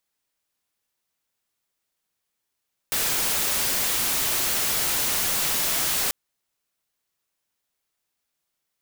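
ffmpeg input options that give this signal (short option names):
-f lavfi -i "anoisesrc=c=white:a=0.109:d=3.19:r=44100:seed=1"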